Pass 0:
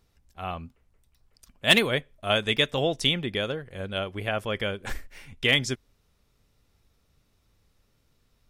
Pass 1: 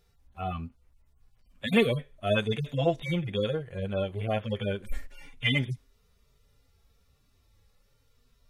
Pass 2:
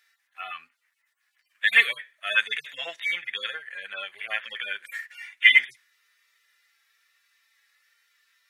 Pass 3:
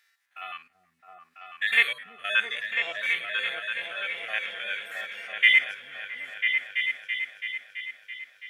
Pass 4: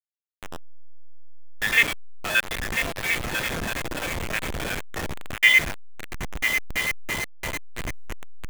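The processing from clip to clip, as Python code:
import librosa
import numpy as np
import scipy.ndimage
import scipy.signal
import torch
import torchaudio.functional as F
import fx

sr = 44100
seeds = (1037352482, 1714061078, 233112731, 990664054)

y1 = fx.hpss_only(x, sr, part='harmonic')
y1 = y1 * librosa.db_to_amplitude(3.5)
y2 = fx.highpass_res(y1, sr, hz=1800.0, q=5.0)
y2 = y2 * librosa.db_to_amplitude(4.0)
y3 = fx.spec_steps(y2, sr, hold_ms=50)
y3 = fx.echo_opening(y3, sr, ms=332, hz=200, octaves=2, feedback_pct=70, wet_db=0)
y4 = fx.delta_hold(y3, sr, step_db=-25.0)
y4 = y4 * librosa.db_to_amplitude(2.5)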